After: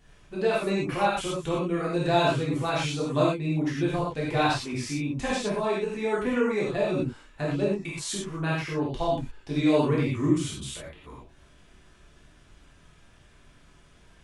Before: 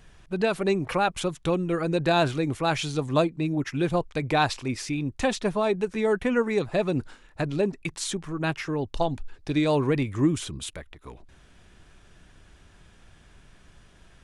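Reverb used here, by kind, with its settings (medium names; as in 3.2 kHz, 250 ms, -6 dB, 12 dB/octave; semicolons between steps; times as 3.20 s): gated-style reverb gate 140 ms flat, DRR -7 dB; trim -8.5 dB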